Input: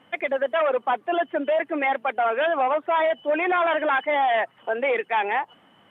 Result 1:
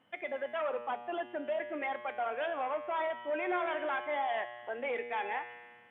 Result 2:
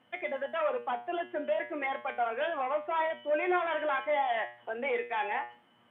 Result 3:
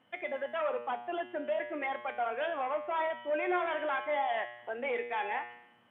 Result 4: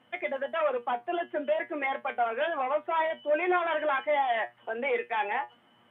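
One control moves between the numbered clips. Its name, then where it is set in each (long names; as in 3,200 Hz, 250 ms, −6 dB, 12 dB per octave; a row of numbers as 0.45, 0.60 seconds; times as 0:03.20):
tuned comb filter, decay: 1.7, 0.39, 0.83, 0.17 seconds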